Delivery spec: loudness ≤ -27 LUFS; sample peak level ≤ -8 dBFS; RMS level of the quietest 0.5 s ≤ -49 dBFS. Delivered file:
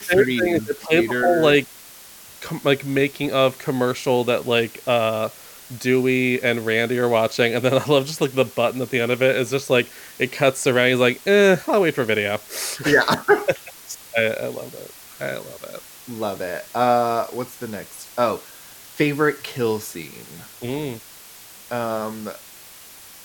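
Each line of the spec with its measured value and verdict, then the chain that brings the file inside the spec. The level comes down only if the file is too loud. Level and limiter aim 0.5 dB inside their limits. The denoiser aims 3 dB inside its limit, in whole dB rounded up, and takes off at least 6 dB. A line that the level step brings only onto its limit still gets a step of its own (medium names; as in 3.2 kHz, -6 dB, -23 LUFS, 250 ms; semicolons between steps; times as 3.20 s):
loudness -20.5 LUFS: fail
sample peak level -4.5 dBFS: fail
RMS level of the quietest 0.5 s -43 dBFS: fail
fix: trim -7 dB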